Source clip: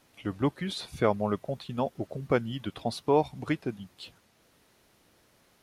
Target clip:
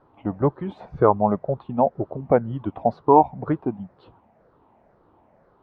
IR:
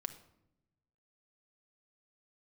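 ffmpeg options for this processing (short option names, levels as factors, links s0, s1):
-af "afftfilt=real='re*pow(10,8/40*sin(2*PI*(0.59*log(max(b,1)*sr/1024/100)/log(2)-(-2)*(pts-256)/sr)))':imag='im*pow(10,8/40*sin(2*PI*(0.59*log(max(b,1)*sr/1024/100)/log(2)-(-2)*(pts-256)/sr)))':win_size=1024:overlap=0.75,lowpass=f=890:t=q:w=2.1,volume=1.78"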